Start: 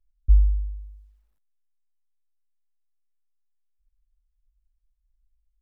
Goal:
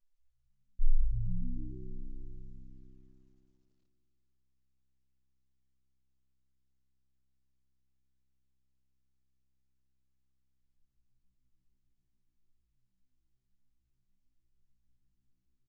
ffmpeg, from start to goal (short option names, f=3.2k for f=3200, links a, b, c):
-filter_complex "[0:a]flanger=delay=1.8:depth=9.1:regen=-55:speed=0.98:shape=sinusoidal,asetrate=15788,aresample=44100,asplit=7[a][b][c][d][e][f][g];[b]adelay=147,afreqshift=-65,volume=-14.5dB[h];[c]adelay=294,afreqshift=-130,volume=-18.9dB[i];[d]adelay=441,afreqshift=-195,volume=-23.4dB[j];[e]adelay=588,afreqshift=-260,volume=-27.8dB[k];[f]adelay=735,afreqshift=-325,volume=-32.2dB[l];[g]adelay=882,afreqshift=-390,volume=-36.7dB[m];[a][h][i][j][k][l][m]amix=inputs=7:normalize=0"